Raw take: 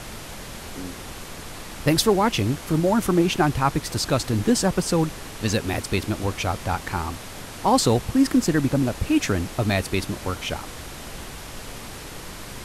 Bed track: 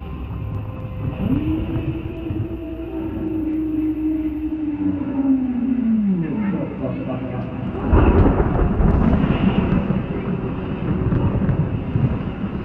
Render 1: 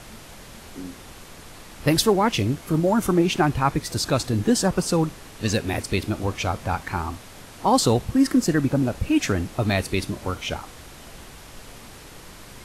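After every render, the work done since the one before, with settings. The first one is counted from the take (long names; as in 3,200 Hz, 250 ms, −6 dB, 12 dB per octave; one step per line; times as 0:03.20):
noise reduction from a noise print 6 dB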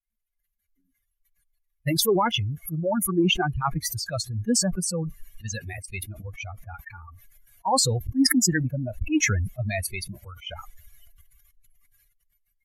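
spectral dynamics exaggerated over time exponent 3
level that may fall only so fast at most 24 dB per second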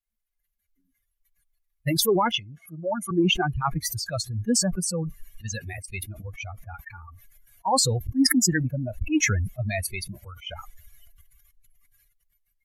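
0:02.33–0:03.11: loudspeaker in its box 270–8,500 Hz, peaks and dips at 280 Hz −5 dB, 430 Hz −9 dB, 7,600 Hz −6 dB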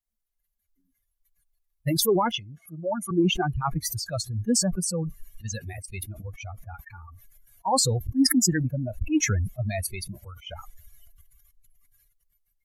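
parametric band 2,200 Hz −6 dB 1.4 octaves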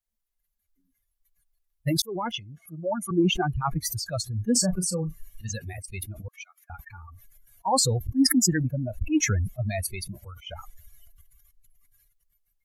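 0:02.02–0:02.66: fade in equal-power
0:04.52–0:05.53: double-tracking delay 33 ms −10.5 dB
0:06.28–0:06.70: high-pass filter 1,500 Hz 24 dB per octave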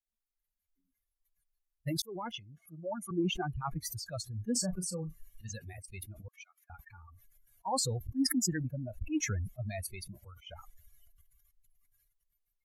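level −9.5 dB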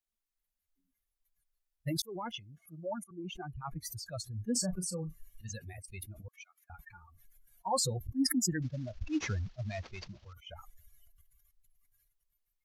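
0:03.04–0:04.77: fade in equal-power, from −19 dB
0:06.77–0:07.97: comb filter 5.6 ms, depth 52%
0:08.62–0:10.33: variable-slope delta modulation 32 kbit/s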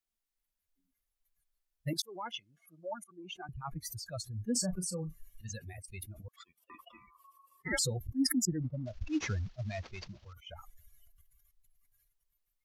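0:01.93–0:03.49: meter weighting curve A
0:06.36–0:07.79: ring modulation 1,100 Hz
0:08.45–0:08.86: Savitzky-Golay smoothing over 65 samples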